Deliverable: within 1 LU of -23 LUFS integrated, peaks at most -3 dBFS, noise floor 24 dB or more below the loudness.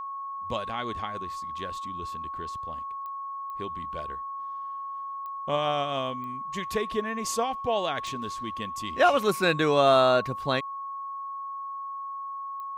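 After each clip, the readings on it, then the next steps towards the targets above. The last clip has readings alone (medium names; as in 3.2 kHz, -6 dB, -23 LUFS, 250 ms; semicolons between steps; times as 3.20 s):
clicks found 6; steady tone 1.1 kHz; tone level -33 dBFS; loudness -29.0 LUFS; peak level -8.5 dBFS; loudness target -23.0 LUFS
-> de-click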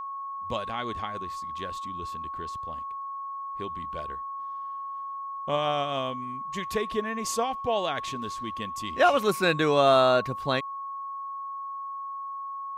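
clicks found 0; steady tone 1.1 kHz; tone level -33 dBFS
-> band-stop 1.1 kHz, Q 30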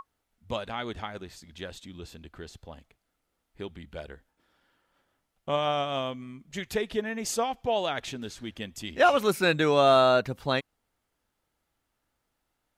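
steady tone not found; loudness -27.0 LUFS; peak level -9.0 dBFS; loudness target -23.0 LUFS
-> trim +4 dB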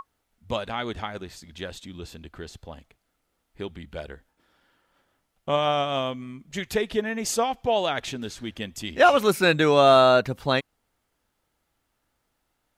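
loudness -23.0 LUFS; peak level -5.0 dBFS; noise floor -76 dBFS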